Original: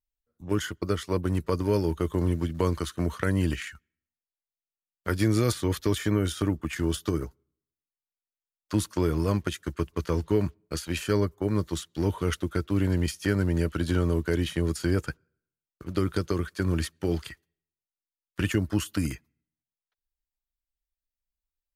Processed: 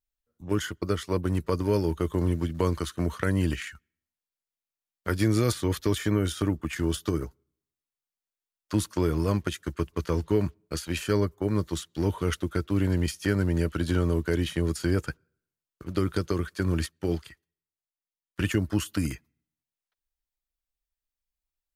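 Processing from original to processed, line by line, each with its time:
16.86–18.40 s: upward expansion, over -37 dBFS

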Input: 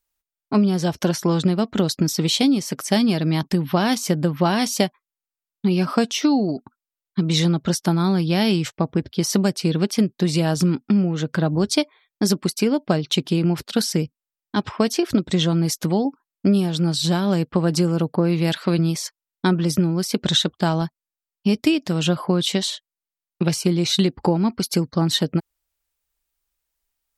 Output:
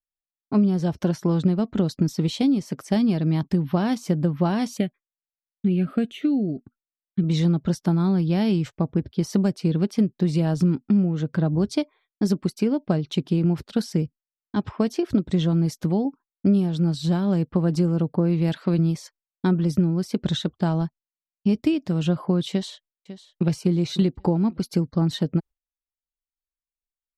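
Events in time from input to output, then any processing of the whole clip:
4.77–7.24 s: static phaser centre 2.3 kHz, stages 4
22.50–23.47 s: echo throw 550 ms, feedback 30%, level -14.5 dB
whole clip: gate with hold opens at -47 dBFS; tilt EQ -2.5 dB/octave; trim -7 dB

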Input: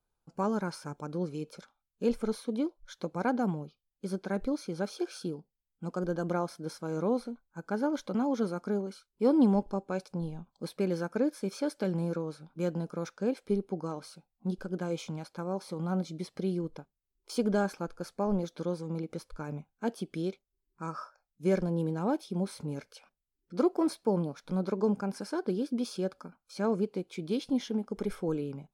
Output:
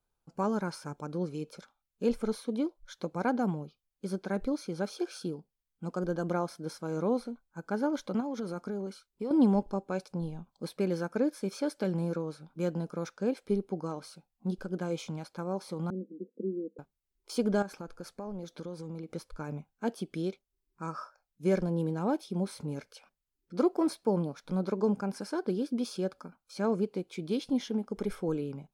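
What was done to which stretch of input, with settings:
8.20–9.31 s: compression, threshold -31 dBFS
15.90–16.79 s: Chebyshev band-pass 200–500 Hz, order 4
17.62–19.14 s: compression 4:1, threshold -37 dBFS

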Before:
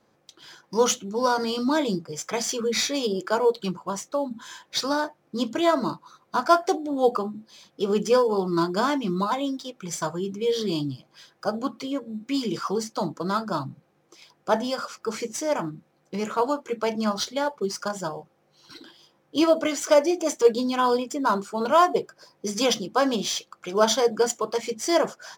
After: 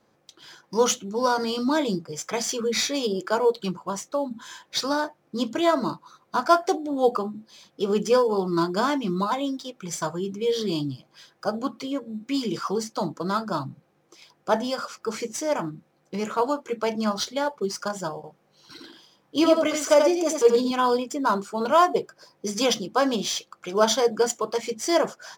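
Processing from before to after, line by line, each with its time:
18.15–20.71 s: delay 86 ms -4.5 dB

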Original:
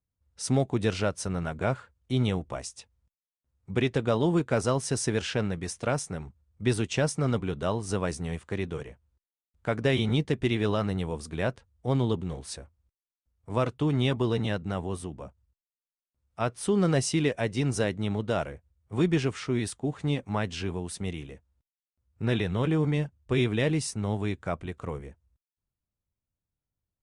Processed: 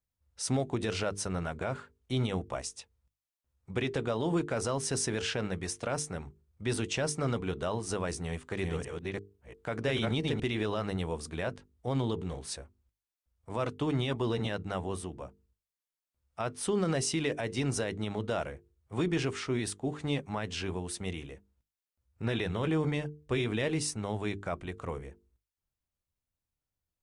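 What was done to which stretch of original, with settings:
8.16–10.40 s: chunks repeated in reverse 344 ms, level -2.5 dB
whole clip: peaking EQ 150 Hz -4 dB 2 oct; hum notches 50/100/150/200/250/300/350/400/450 Hz; peak limiter -21 dBFS

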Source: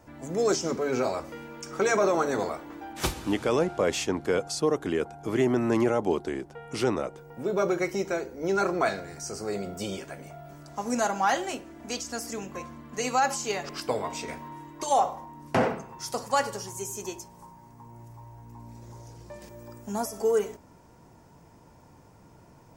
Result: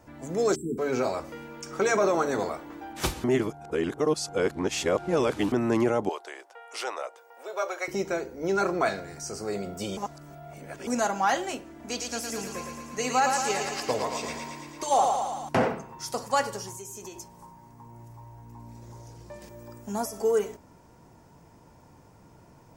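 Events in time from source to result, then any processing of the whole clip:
0.55–0.78 s: spectral selection erased 460–7400 Hz
3.24–5.52 s: reverse
6.09–7.88 s: high-pass 580 Hz 24 dB/octave
9.97–10.87 s: reverse
11.77–15.49 s: thinning echo 112 ms, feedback 69%, high-pass 400 Hz, level -4 dB
16.73–17.17 s: compression, threshold -37 dBFS

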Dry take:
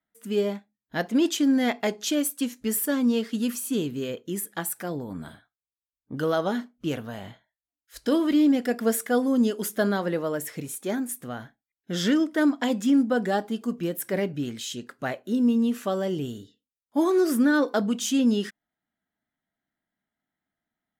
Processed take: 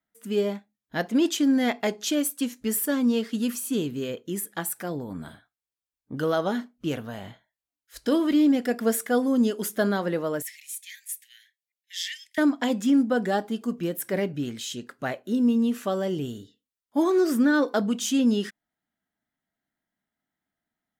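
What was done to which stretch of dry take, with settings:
10.42–12.38 s: steep high-pass 1.8 kHz 96 dB/octave
17.02–17.59 s: peaking EQ 11 kHz -12.5 dB 0.24 oct

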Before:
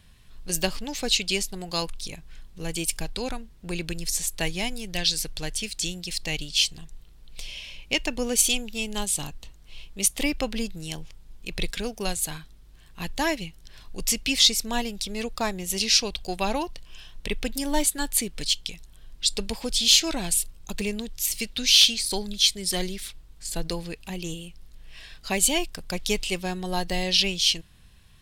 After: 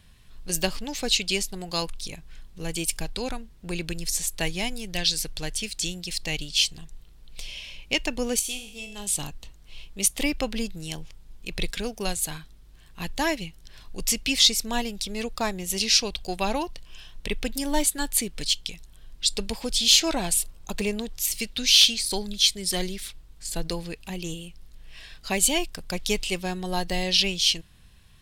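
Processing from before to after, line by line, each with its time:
8.39–9.07 s: feedback comb 51 Hz, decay 0.73 s, mix 80%
19.98–21.20 s: peaking EQ 770 Hz +5.5 dB 1.9 oct

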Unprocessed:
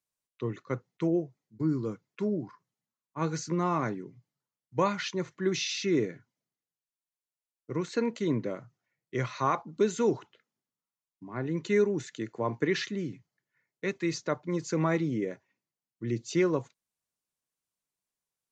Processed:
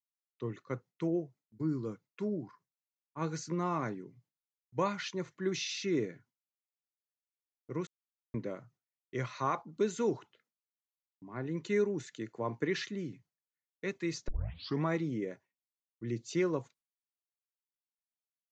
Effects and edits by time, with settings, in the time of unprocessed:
7.87–8.34 s: mute
14.28 s: tape start 0.55 s
whole clip: gate with hold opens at -56 dBFS; trim -5 dB

